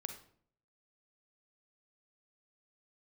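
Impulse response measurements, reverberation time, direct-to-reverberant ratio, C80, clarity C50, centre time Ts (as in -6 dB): 0.60 s, 6.0 dB, 12.5 dB, 7.5 dB, 15 ms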